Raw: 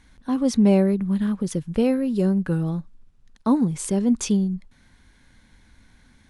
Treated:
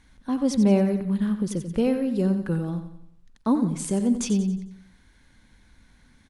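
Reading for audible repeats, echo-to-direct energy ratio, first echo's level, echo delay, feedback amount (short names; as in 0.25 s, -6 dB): 4, -9.0 dB, -10.0 dB, 90 ms, 44%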